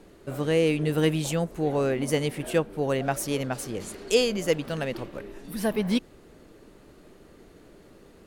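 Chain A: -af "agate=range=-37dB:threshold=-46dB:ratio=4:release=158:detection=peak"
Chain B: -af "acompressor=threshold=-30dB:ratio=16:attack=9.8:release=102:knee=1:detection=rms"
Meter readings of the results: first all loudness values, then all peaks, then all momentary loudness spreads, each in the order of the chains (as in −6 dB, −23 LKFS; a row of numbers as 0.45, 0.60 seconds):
−27.0, −35.0 LKFS; −8.5, −16.0 dBFS; 11, 19 LU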